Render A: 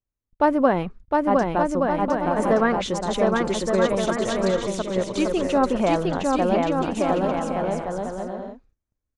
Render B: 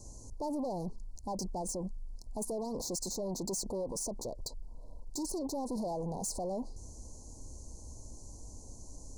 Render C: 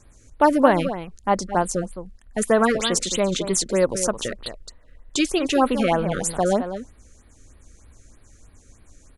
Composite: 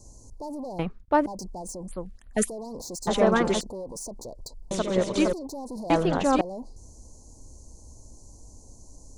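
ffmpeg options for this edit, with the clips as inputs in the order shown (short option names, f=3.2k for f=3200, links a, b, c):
-filter_complex "[0:a]asplit=4[a][b][c][d];[1:a]asplit=6[e][f][g][h][i][j];[e]atrim=end=0.792[k];[a]atrim=start=0.788:end=1.262[l];[f]atrim=start=1.258:end=1.882[m];[2:a]atrim=start=1.878:end=2.492[n];[g]atrim=start=2.488:end=3.072[o];[b]atrim=start=3.068:end=3.612[p];[h]atrim=start=3.608:end=4.712[q];[c]atrim=start=4.708:end=5.332[r];[i]atrim=start=5.328:end=5.902[s];[d]atrim=start=5.898:end=6.412[t];[j]atrim=start=6.408[u];[k][l]acrossfade=d=0.004:c1=hsin:c2=hsin[v];[v][m]acrossfade=d=0.004:c1=hsin:c2=hsin[w];[w][n]acrossfade=d=0.004:c1=hsin:c2=hsin[x];[x][o]acrossfade=d=0.004:c1=hsin:c2=hsin[y];[y][p]acrossfade=d=0.004:c1=hsin:c2=hsin[z];[z][q]acrossfade=d=0.004:c1=hsin:c2=hsin[aa];[aa][r]acrossfade=d=0.004:c1=hsin:c2=hsin[ab];[ab][s]acrossfade=d=0.004:c1=hsin:c2=hsin[ac];[ac][t]acrossfade=d=0.004:c1=hsin:c2=hsin[ad];[ad][u]acrossfade=d=0.004:c1=hsin:c2=hsin"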